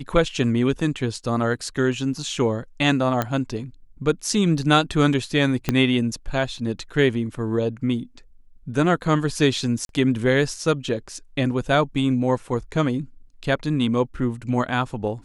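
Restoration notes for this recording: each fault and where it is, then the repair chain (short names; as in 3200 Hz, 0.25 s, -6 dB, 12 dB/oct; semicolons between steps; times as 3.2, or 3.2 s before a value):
3.22 pop -9 dBFS
5.69 pop -6 dBFS
9.85–9.89 gap 42 ms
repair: de-click; interpolate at 9.85, 42 ms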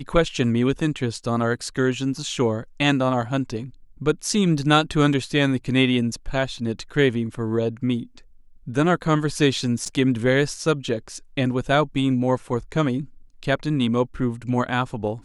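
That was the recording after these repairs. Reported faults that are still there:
5.69 pop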